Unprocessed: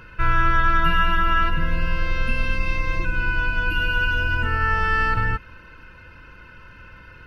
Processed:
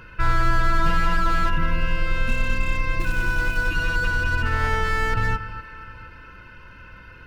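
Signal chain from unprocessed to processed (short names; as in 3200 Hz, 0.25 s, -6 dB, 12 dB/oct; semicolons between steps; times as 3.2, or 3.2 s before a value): echo with dull and thin repeats by turns 0.235 s, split 1600 Hz, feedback 59%, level -12 dB; 3–3.69 short-mantissa float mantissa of 2-bit; slew limiter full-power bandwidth 100 Hz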